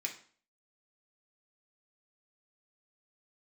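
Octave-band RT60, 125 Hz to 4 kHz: 0.45, 0.50, 0.45, 0.45, 0.45, 0.40 s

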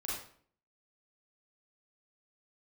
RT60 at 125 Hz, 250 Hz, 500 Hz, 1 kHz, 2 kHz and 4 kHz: 0.60, 0.65, 0.55, 0.50, 0.45, 0.40 s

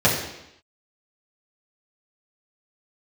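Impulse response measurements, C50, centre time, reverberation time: 4.5 dB, 40 ms, 0.85 s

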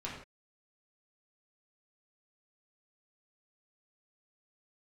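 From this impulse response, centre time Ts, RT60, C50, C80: 40 ms, not exponential, 3.5 dB, 6.5 dB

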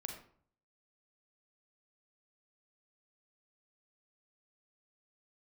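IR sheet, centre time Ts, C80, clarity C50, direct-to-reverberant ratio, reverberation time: 26 ms, 9.0 dB, 5.5 dB, 2.5 dB, 0.55 s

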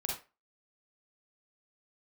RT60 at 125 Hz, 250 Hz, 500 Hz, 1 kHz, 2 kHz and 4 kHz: 0.20, 0.25, 0.30, 0.30, 0.30, 0.25 s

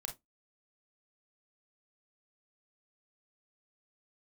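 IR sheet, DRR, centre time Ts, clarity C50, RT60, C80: 3.0 dB, 16 ms, 12.0 dB, 0.15 s, 25.5 dB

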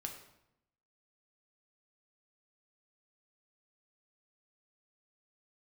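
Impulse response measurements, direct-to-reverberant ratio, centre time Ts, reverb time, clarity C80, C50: 2.5 dB, 23 ms, 0.80 s, 10.0 dB, 7.0 dB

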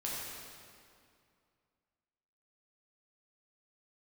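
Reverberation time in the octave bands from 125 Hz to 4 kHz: 2.6, 2.5, 2.4, 2.3, 2.1, 1.8 s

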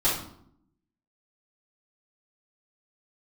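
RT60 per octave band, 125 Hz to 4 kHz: 0.90, 1.0, 0.70, 0.65, 0.50, 0.45 s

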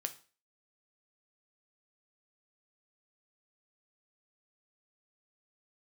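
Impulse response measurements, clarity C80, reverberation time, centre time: 20.5 dB, 0.40 s, 6 ms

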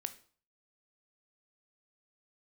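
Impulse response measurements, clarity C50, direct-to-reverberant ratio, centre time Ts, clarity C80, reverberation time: 14.5 dB, 10.0 dB, 5 ms, 19.0 dB, 0.45 s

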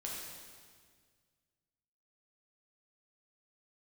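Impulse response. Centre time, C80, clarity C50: 98 ms, 1.5 dB, -0.5 dB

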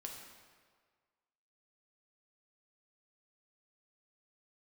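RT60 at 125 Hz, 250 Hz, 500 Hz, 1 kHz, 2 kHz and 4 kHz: 1.5, 1.5, 1.7, 1.7, 1.5, 1.3 s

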